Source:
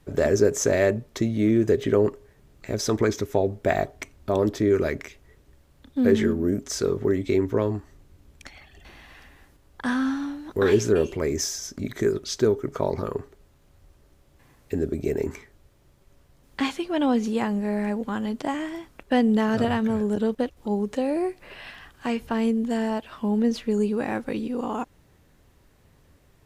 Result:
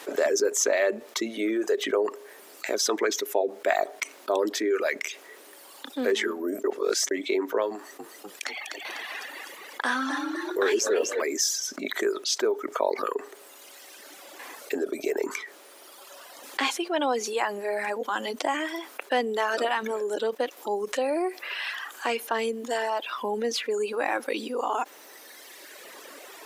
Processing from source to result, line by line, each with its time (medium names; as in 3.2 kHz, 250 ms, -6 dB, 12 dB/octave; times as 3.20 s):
6.64–7.11 s: reverse
7.74–11.22 s: frequency-shifting echo 249 ms, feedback 49%, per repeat +49 Hz, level -7.5 dB
whole clip: Bessel high-pass 530 Hz, order 6; reverb removal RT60 1.5 s; level flattener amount 50%